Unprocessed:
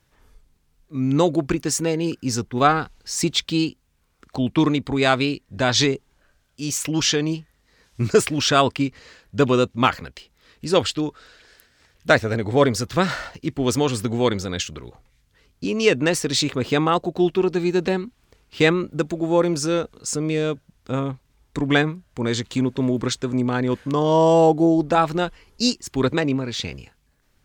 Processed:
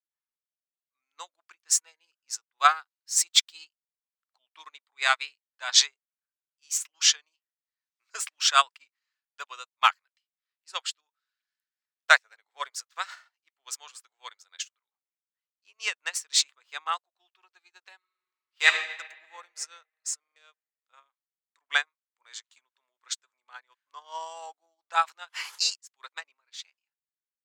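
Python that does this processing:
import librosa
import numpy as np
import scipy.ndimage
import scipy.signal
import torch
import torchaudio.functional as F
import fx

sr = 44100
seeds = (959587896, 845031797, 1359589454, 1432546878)

y = fx.high_shelf(x, sr, hz=8900.0, db=7.0, at=(2.58, 3.59))
y = fx.peak_eq(y, sr, hz=2000.0, db=4.5, octaves=0.44, at=(4.97, 5.44))
y = fx.reverb_throw(y, sr, start_s=17.97, length_s=0.71, rt60_s=3.0, drr_db=-4.5)
y = fx.pre_swell(y, sr, db_per_s=21.0, at=(24.9, 25.74), fade=0.02)
y = fx.edit(y, sr, fx.stutter_over(start_s=20.2, slice_s=0.04, count=4), tone=tone)
y = fx.dynamic_eq(y, sr, hz=7400.0, q=1.9, threshold_db=-43.0, ratio=4.0, max_db=5)
y = scipy.signal.sosfilt(scipy.signal.butter(4, 970.0, 'highpass', fs=sr, output='sos'), y)
y = fx.upward_expand(y, sr, threshold_db=-42.0, expansion=2.5)
y = y * 10.0 ** (3.0 / 20.0)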